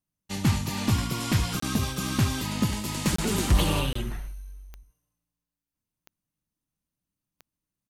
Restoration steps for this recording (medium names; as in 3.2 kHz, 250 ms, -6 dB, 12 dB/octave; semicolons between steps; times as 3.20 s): de-click; interpolate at 1.60/3.16/3.93 s, 24 ms; inverse comb 73 ms -13.5 dB